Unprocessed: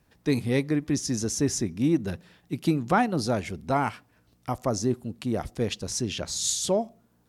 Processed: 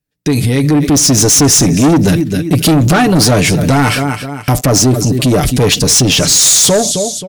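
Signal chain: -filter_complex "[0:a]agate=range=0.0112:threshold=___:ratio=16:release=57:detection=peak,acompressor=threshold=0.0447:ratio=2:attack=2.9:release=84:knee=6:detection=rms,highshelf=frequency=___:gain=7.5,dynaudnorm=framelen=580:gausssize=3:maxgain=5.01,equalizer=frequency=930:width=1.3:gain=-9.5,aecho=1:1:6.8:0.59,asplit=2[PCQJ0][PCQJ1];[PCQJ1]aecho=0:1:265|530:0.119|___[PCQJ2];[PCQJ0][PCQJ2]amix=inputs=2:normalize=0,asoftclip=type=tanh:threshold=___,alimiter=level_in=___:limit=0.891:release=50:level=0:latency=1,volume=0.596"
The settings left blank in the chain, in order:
0.00251, 6k, 0.0345, 0.119, 25.1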